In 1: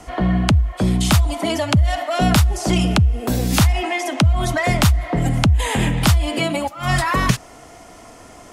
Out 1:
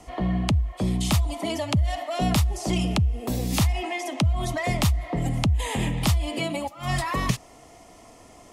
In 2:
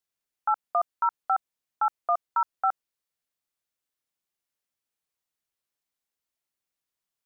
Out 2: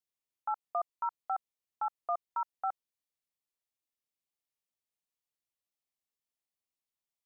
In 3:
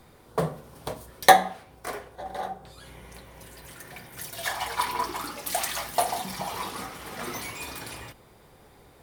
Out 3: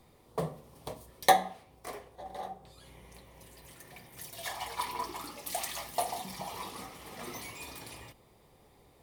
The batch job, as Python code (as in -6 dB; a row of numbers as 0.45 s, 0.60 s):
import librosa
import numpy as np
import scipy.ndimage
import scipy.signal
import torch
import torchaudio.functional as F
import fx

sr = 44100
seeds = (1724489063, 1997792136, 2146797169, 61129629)

y = fx.peak_eq(x, sr, hz=1500.0, db=-11.5, octaves=0.27)
y = F.gain(torch.from_numpy(y), -7.0).numpy()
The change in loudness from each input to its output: -7.0 LU, -9.0 LU, -7.5 LU